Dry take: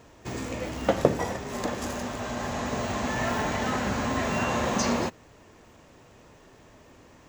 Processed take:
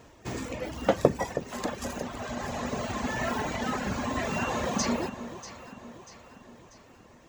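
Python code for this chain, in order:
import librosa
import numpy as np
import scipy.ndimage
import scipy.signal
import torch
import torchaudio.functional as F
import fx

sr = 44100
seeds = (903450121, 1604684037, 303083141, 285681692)

y = fx.dereverb_blind(x, sr, rt60_s=2.0)
y = fx.echo_alternate(y, sr, ms=320, hz=900.0, feedback_pct=69, wet_db=-10.5)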